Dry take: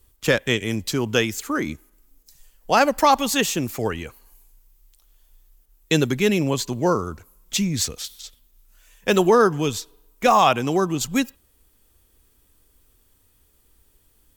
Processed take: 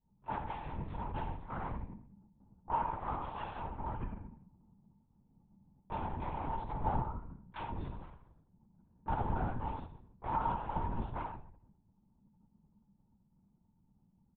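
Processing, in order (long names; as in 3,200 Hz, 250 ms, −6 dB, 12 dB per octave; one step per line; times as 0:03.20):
sub-harmonics by changed cycles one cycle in 2, inverted
low-pass that shuts in the quiet parts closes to 430 Hz, open at −17.5 dBFS
downward compressor 10 to 1, threshold −28 dBFS, peak gain reduction 17 dB
pair of resonant band-passes 420 Hz, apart 2.2 octaves
single-tap delay 87 ms −9 dB
rectangular room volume 90 cubic metres, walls mixed, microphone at 1.8 metres
linear-prediction vocoder at 8 kHz whisper
level −3 dB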